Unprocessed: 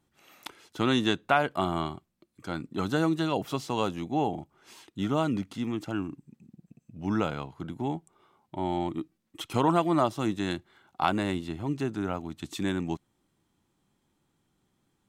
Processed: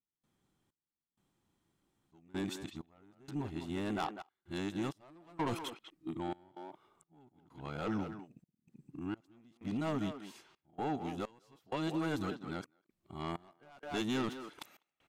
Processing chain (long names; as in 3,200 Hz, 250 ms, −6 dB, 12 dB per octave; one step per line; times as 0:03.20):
played backwards from end to start
soft clipping −23.5 dBFS, distortion −10 dB
far-end echo of a speakerphone 200 ms, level −7 dB
gate pattern ".xx..xxxx" 64 BPM −24 dB
level −5.5 dB